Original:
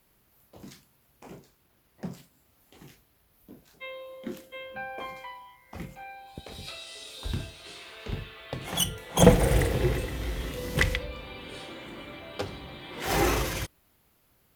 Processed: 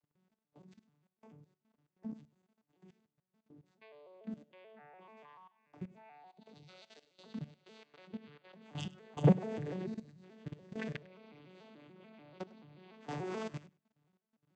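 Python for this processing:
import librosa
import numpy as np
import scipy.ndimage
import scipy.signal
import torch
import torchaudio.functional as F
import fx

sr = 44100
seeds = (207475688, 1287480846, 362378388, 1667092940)

y = fx.vocoder_arp(x, sr, chord='major triad', root=50, every_ms=145)
y = fx.spec_box(y, sr, start_s=9.86, length_s=0.37, low_hz=240.0, high_hz=3700.0, gain_db=-11)
y = fx.level_steps(y, sr, step_db=18)
y = fx.echo_feedback(y, sr, ms=100, feedback_pct=15, wet_db=-21.0)
y = y * librosa.db_to_amplitude(-3.5)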